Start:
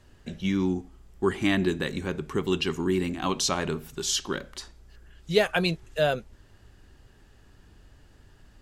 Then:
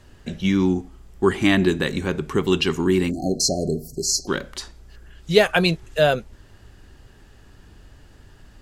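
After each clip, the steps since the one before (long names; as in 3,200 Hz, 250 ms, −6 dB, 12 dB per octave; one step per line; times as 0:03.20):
time-frequency box erased 0:03.10–0:04.28, 770–4,100 Hz
level +6.5 dB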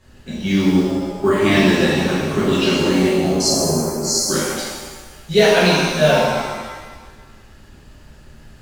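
noise that follows the level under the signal 34 dB
reverb with rising layers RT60 1.4 s, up +7 semitones, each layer −8 dB, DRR −9.5 dB
level −5.5 dB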